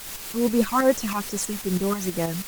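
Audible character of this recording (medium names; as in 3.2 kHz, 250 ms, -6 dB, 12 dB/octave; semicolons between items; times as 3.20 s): phasing stages 8, 2.4 Hz, lowest notch 450–4500 Hz; a quantiser's noise floor 6-bit, dither triangular; tremolo saw up 6.2 Hz, depth 50%; Opus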